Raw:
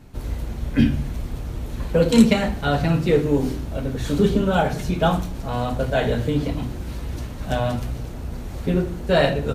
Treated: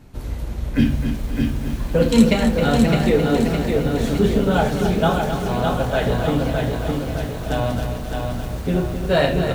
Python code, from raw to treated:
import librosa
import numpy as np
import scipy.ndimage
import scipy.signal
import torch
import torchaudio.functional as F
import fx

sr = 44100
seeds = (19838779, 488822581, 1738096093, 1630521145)

y = fx.echo_feedback(x, sr, ms=265, feedback_pct=45, wet_db=-8.5)
y = fx.echo_crushed(y, sr, ms=611, feedback_pct=55, bits=7, wet_db=-4)